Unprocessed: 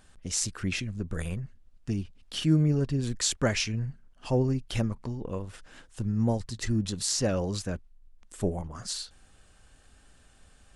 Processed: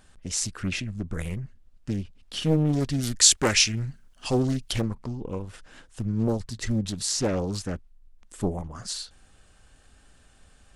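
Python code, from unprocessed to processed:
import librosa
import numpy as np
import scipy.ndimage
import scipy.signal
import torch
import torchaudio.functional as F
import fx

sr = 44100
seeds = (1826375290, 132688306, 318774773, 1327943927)

y = fx.high_shelf(x, sr, hz=2400.0, db=12.0, at=(2.73, 4.73))
y = fx.doppler_dist(y, sr, depth_ms=0.83)
y = y * 10.0 ** (1.5 / 20.0)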